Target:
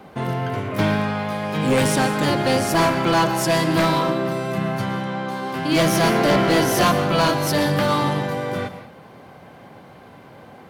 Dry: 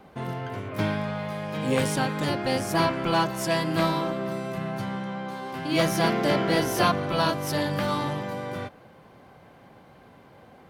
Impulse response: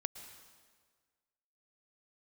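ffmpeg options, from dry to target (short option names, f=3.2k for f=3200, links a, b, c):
-filter_complex "[0:a]highpass=73,asoftclip=type=hard:threshold=-20.5dB[a];[1:a]atrim=start_sample=2205,afade=t=out:st=0.27:d=0.01,atrim=end_sample=12348[b];[a][b]afir=irnorm=-1:irlink=0,volume=9dB"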